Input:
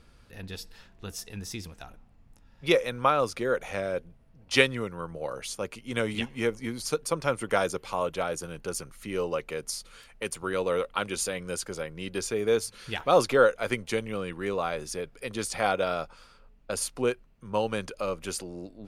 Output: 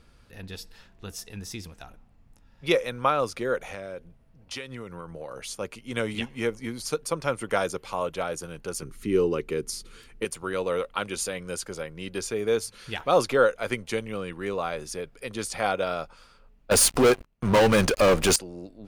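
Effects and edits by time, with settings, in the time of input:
0:03.64–0:05.47: downward compressor, threshold −33 dBFS
0:08.82–0:10.25: low shelf with overshoot 480 Hz +6.5 dB, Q 3
0:16.71–0:18.36: leveller curve on the samples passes 5

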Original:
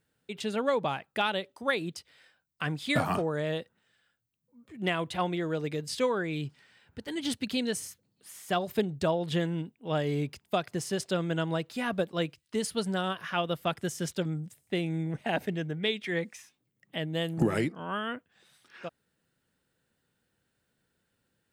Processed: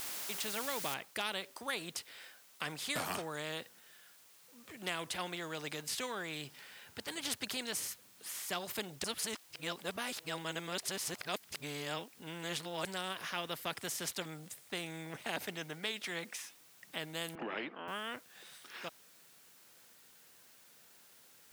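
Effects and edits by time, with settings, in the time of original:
0:00.94: noise floor change −48 dB −70 dB
0:09.04–0:12.85: reverse
0:17.35–0:17.88: elliptic band-pass filter 250–2,800 Hz, stop band 50 dB
whole clip: high-pass filter 360 Hz 6 dB per octave; every bin compressed towards the loudest bin 2 to 1; level −6 dB

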